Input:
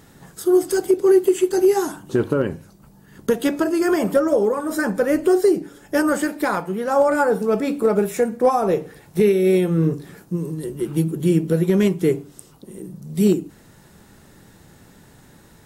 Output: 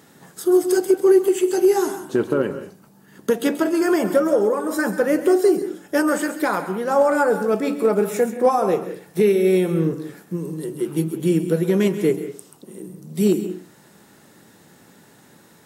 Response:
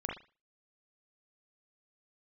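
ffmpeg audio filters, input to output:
-filter_complex "[0:a]highpass=180,asplit=2[a][b];[1:a]atrim=start_sample=2205,highshelf=f=6.3k:g=12,adelay=133[c];[b][c]afir=irnorm=-1:irlink=0,volume=-14.5dB[d];[a][d]amix=inputs=2:normalize=0"

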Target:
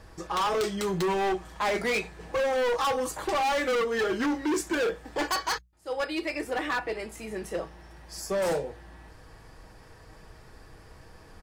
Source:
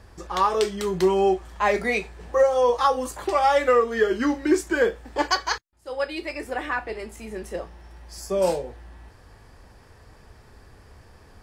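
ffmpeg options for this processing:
-af "bandreject=f=60:t=h:w=6,bandreject=f=120:t=h:w=6,bandreject=f=180:t=h:w=6,aecho=1:1:6.3:0.37,asoftclip=type=hard:threshold=-24dB"

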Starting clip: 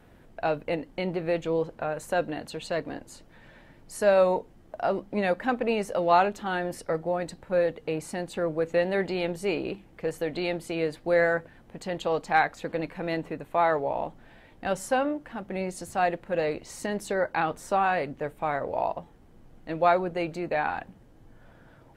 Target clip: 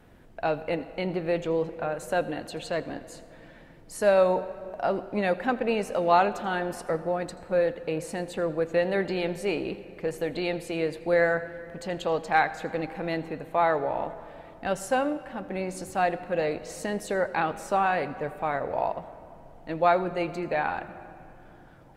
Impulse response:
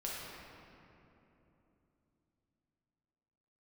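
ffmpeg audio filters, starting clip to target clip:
-filter_complex "[0:a]asplit=2[a][b];[1:a]atrim=start_sample=2205,adelay=82[c];[b][c]afir=irnorm=-1:irlink=0,volume=-16dB[d];[a][d]amix=inputs=2:normalize=0"

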